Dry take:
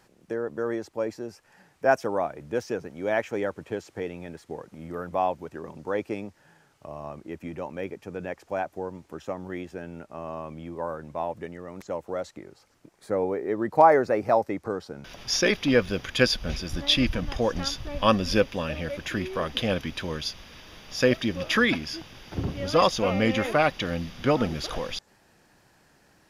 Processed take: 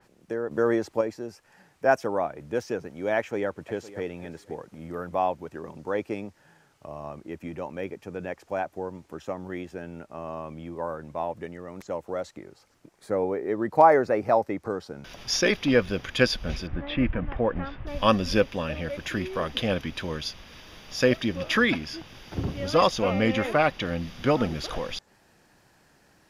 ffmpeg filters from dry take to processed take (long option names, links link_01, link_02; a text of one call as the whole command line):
ffmpeg -i in.wav -filter_complex "[0:a]asplit=2[link_01][link_02];[link_02]afade=type=in:start_time=3.17:duration=0.01,afade=type=out:start_time=4.03:duration=0.01,aecho=0:1:510|1020:0.149624|0.0224435[link_03];[link_01][link_03]amix=inputs=2:normalize=0,asplit=3[link_04][link_05][link_06];[link_04]afade=type=out:start_time=16.66:duration=0.02[link_07];[link_05]lowpass=frequency=2200:width=0.5412,lowpass=frequency=2200:width=1.3066,afade=type=in:start_time=16.66:duration=0.02,afade=type=out:start_time=17.86:duration=0.02[link_08];[link_06]afade=type=in:start_time=17.86:duration=0.02[link_09];[link_07][link_08][link_09]amix=inputs=3:normalize=0,asplit=3[link_10][link_11][link_12];[link_10]atrim=end=0.512[link_13];[link_11]atrim=start=0.508:end=1.012,asetpts=PTS-STARTPTS,volume=6dB[link_14];[link_12]atrim=start=1.008[link_15];[link_13][link_14]acrossfade=duration=0.004:curve1=hsin:curve2=hsin[link_16];[link_16][link_15]acrossfade=duration=0.004:curve1=hsin:curve2=hsin,adynamicequalizer=threshold=0.00794:dfrequency=3700:dqfactor=0.7:tfrequency=3700:tqfactor=0.7:attack=5:release=100:ratio=0.375:range=2.5:mode=cutabove:tftype=highshelf" out.wav